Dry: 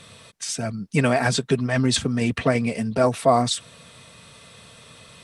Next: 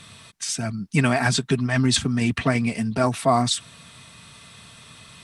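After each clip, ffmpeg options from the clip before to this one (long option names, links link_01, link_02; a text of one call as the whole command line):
ffmpeg -i in.wav -af "equalizer=frequency=510:width_type=o:width=0.55:gain=-11.5,volume=1.5dB" out.wav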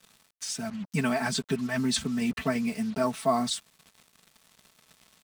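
ffmpeg -i in.wav -af "aecho=1:1:4.6:0.75,acrusher=bits=5:mix=0:aa=0.5,volume=-9dB" out.wav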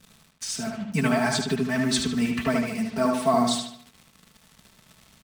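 ffmpeg -i in.wav -filter_complex "[0:a]acrossover=split=230|4100[link_01][link_02][link_03];[link_01]acompressor=mode=upward:threshold=-54dB:ratio=2.5[link_04];[link_04][link_02][link_03]amix=inputs=3:normalize=0,asplit=2[link_05][link_06];[link_06]adelay=75,lowpass=frequency=4600:poles=1,volume=-3dB,asplit=2[link_07][link_08];[link_08]adelay=75,lowpass=frequency=4600:poles=1,volume=0.47,asplit=2[link_09][link_10];[link_10]adelay=75,lowpass=frequency=4600:poles=1,volume=0.47,asplit=2[link_11][link_12];[link_12]adelay=75,lowpass=frequency=4600:poles=1,volume=0.47,asplit=2[link_13][link_14];[link_14]adelay=75,lowpass=frequency=4600:poles=1,volume=0.47,asplit=2[link_15][link_16];[link_16]adelay=75,lowpass=frequency=4600:poles=1,volume=0.47[link_17];[link_05][link_07][link_09][link_11][link_13][link_15][link_17]amix=inputs=7:normalize=0,volume=2.5dB" out.wav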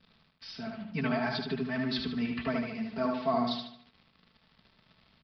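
ffmpeg -i in.wav -af "bandreject=frequency=50:width_type=h:width=6,bandreject=frequency=100:width_type=h:width=6,bandreject=frequency=150:width_type=h:width=6,bandreject=frequency=200:width_type=h:width=6,aresample=11025,aresample=44100,volume=-7.5dB" out.wav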